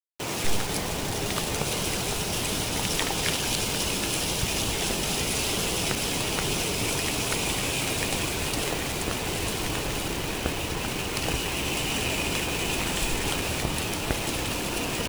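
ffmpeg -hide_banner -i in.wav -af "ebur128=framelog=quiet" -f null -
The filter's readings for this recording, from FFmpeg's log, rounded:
Integrated loudness:
  I:         -26.7 LUFS
  Threshold: -36.7 LUFS
Loudness range:
  LRA:         2.4 LU
  Threshold: -46.5 LUFS
  LRA low:   -27.9 LUFS
  LRA high:  -25.5 LUFS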